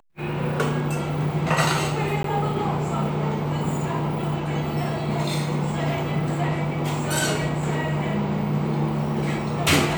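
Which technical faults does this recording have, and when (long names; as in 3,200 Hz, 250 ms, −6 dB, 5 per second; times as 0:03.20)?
0:02.23–0:02.24: drop-out 13 ms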